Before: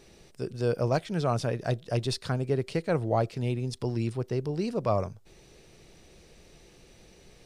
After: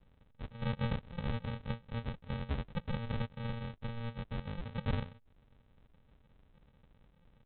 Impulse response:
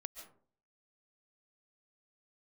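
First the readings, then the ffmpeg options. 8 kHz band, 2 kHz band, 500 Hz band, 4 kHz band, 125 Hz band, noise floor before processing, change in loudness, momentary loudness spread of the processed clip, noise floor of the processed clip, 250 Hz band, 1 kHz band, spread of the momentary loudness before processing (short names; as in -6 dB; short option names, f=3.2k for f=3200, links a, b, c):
under -35 dB, -6.0 dB, -17.0 dB, -9.0 dB, -8.0 dB, -56 dBFS, -10.0 dB, 5 LU, -67 dBFS, -9.0 dB, -12.0 dB, 4 LU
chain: -af "equalizer=f=200:w=4.3:g=-14.5,aresample=8000,acrusher=samples=23:mix=1:aa=0.000001,aresample=44100,volume=-8dB"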